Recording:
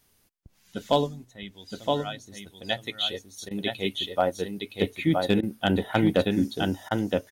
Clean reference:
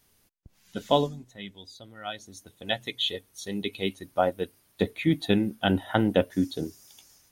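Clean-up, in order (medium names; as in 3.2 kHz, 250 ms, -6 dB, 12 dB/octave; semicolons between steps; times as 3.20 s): clip repair -10.5 dBFS; interpolate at 3.49/5.41/6.89 s, 18 ms; inverse comb 968 ms -3.5 dB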